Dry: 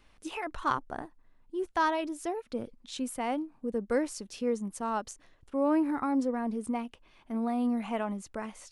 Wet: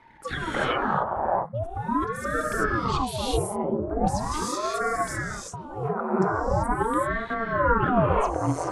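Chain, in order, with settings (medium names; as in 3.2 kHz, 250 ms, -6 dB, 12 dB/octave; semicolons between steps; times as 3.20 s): resonances exaggerated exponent 1.5; high-order bell 870 Hz +14 dB; compressor with a negative ratio -30 dBFS, ratio -1; spectral replace 5.18–5.61 s, 1–2.1 kHz; gated-style reverb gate 410 ms rising, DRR -6.5 dB; dynamic bell 9.8 kHz, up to -4 dB, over -44 dBFS, Q 0.83; ring modulator with a swept carrier 500 Hz, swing 85%, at 0.41 Hz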